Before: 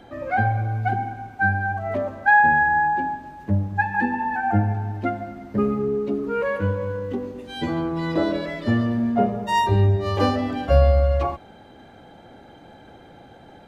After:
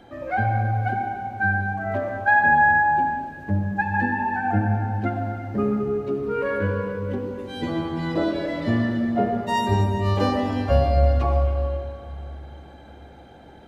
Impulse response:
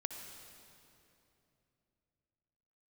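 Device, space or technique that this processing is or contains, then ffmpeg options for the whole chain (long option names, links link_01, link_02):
stairwell: -filter_complex "[1:a]atrim=start_sample=2205[link_01];[0:a][link_01]afir=irnorm=-1:irlink=0,asettb=1/sr,asplit=3[link_02][link_03][link_04];[link_02]atrim=end=6.194[link_05];[link_03]atrim=start=6.19:end=7.31,asetpts=PTS-STARTPTS,afade=type=in:duration=0.004:curve=qsin,afade=type=out:start_time=1.116:duration=0.004:curve=qsin,bandreject=frequency=6700:width=10[link_06];[link_04]atrim=start=7.306[link_07];[link_05][link_06]acrossfade=duration=0.004:curve1=hsin:curve2=qsin[link_08];[link_08][link_07]acrossfade=duration=0.004:curve1=qsin:curve2=hsin"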